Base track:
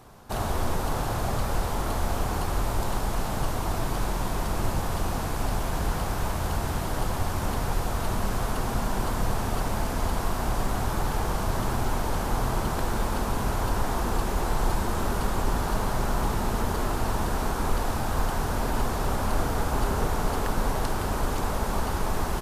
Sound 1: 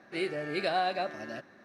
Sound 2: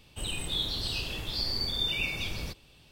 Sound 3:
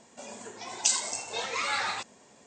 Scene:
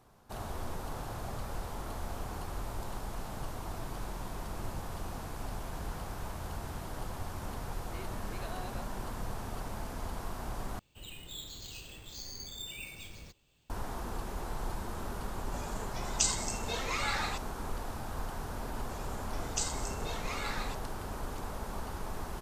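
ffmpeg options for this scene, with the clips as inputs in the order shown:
ffmpeg -i bed.wav -i cue0.wav -i cue1.wav -i cue2.wav -filter_complex "[3:a]asplit=2[link_01][link_02];[0:a]volume=-12dB[link_03];[2:a]acrusher=samples=4:mix=1:aa=0.000001[link_04];[link_03]asplit=2[link_05][link_06];[link_05]atrim=end=10.794[link_07];[link_04]atrim=end=2.91,asetpts=PTS-STARTPTS,volume=-13dB[link_08];[link_06]atrim=start=13.696[link_09];[1:a]atrim=end=1.64,asetpts=PTS-STARTPTS,volume=-16.5dB,afade=type=in:duration=0.004:curve=hsin,afade=type=out:start_time=1.636:duration=0.004:curve=hsin,adelay=343098S[link_10];[link_01]atrim=end=2.46,asetpts=PTS-STARTPTS,volume=-4dB,afade=type=in:duration=0.004:curve=hsin,afade=type=out:start_time=2.456:duration=0.004:curve=hsin,adelay=15350[link_11];[link_02]atrim=end=2.46,asetpts=PTS-STARTPTS,volume=-9.5dB,afade=type=in:duration=0.004:curve=hsin,afade=type=out:start_time=2.456:duration=0.004:curve=hsin,adelay=18720[link_12];[link_07][link_08]acrossfade=duration=0.004:curve1=hsin:curve2=hsin[link_13];[link_13][link_09]acrossfade=duration=0.004:curve1=hsin:curve2=hsin[link_14];[link_14][link_10][link_11][link_12]amix=inputs=4:normalize=0" out.wav

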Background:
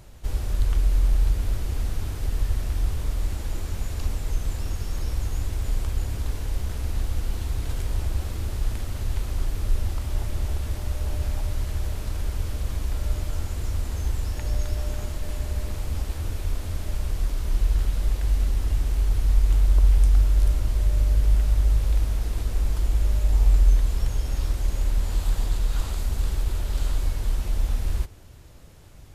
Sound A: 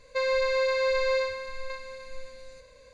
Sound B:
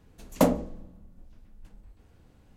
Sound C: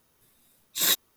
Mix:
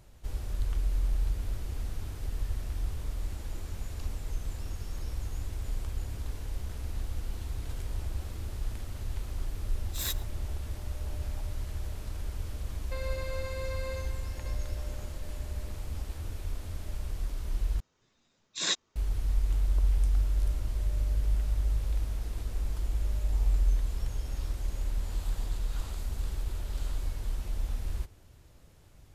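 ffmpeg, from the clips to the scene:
ffmpeg -i bed.wav -i cue0.wav -i cue1.wav -i cue2.wav -filter_complex "[3:a]asplit=2[link_01][link_02];[0:a]volume=-8.5dB[link_03];[link_01]asplit=2[link_04][link_05];[link_05]adelay=110.8,volume=-21dB,highshelf=frequency=4000:gain=-2.49[link_06];[link_04][link_06]amix=inputs=2:normalize=0[link_07];[link_02]aresample=16000,aresample=44100[link_08];[link_03]asplit=2[link_09][link_10];[link_09]atrim=end=17.804[link_11];[link_08]atrim=end=1.16,asetpts=PTS-STARTPTS,volume=-4dB[link_12];[link_10]atrim=start=18.956[link_13];[link_07]atrim=end=1.16,asetpts=PTS-STARTPTS,volume=-11.5dB,afade=type=in:duration=0.004:curve=hsin,afade=type=out:start_time=1.156:duration=0.004:curve=hsin,adelay=9180[link_14];[1:a]atrim=end=2.93,asetpts=PTS-STARTPTS,volume=-13.5dB,afade=type=in:duration=0.004:curve=hsin,afade=type=out:start_time=2.926:duration=0.004:curve=hsin,adelay=12760[link_15];[link_11][link_12]acrossfade=duration=0.004:curve1=hsin:curve2=hsin[link_16];[link_16][link_13]acrossfade=duration=0.004:curve1=hsin:curve2=hsin[link_17];[link_17][link_14][link_15]amix=inputs=3:normalize=0" out.wav

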